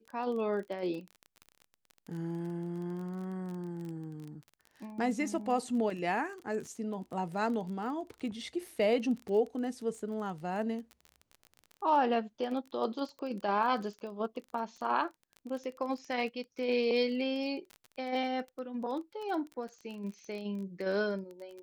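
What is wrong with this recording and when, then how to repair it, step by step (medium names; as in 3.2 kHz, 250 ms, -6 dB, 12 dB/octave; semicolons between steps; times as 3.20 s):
crackle 23 per s -39 dBFS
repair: de-click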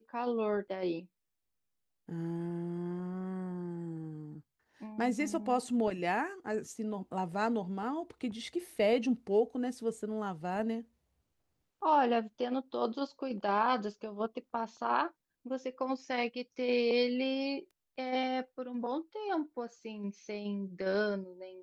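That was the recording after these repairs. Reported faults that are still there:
nothing left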